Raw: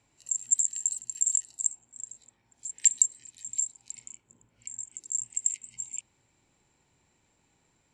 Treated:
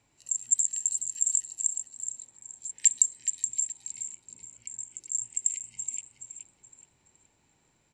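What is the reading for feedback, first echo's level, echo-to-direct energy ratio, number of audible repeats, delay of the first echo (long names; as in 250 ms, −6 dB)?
30%, −8.0 dB, −7.5 dB, 3, 423 ms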